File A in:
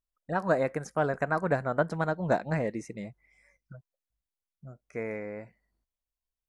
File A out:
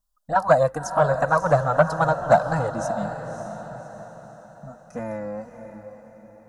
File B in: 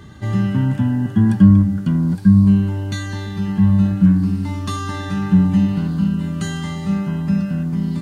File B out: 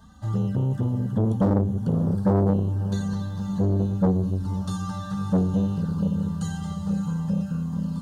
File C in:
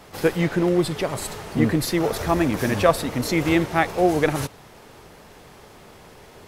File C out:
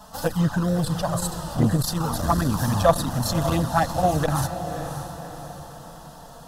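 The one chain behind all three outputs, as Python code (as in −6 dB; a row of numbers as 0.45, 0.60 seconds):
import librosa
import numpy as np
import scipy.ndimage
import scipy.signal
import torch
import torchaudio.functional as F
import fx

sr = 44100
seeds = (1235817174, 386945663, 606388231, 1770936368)

y = fx.env_flanger(x, sr, rest_ms=4.9, full_db=-13.5)
y = 10.0 ** (-6.0 / 20.0) * (np.abs((y / 10.0 ** (-6.0 / 20.0) + 3.0) % 4.0 - 2.0) - 1.0)
y = fx.fixed_phaser(y, sr, hz=920.0, stages=4)
y = fx.echo_diffused(y, sr, ms=580, feedback_pct=45, wet_db=-9.5)
y = fx.transformer_sat(y, sr, knee_hz=390.0)
y = y * 10.0 ** (-24 / 20.0) / np.sqrt(np.mean(np.square(y)))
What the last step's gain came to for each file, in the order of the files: +15.0, −2.5, +7.0 decibels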